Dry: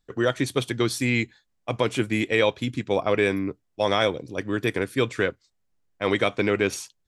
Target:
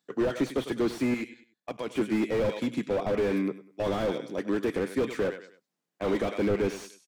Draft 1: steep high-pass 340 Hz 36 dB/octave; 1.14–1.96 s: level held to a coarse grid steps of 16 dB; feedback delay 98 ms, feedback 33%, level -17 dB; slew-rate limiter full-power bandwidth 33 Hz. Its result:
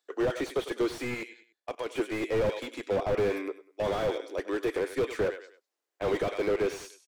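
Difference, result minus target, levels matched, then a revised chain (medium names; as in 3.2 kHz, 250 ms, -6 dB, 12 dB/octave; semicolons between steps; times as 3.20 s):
250 Hz band -4.5 dB
steep high-pass 160 Hz 36 dB/octave; 1.14–1.96 s: level held to a coarse grid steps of 16 dB; feedback delay 98 ms, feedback 33%, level -17 dB; slew-rate limiter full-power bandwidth 33 Hz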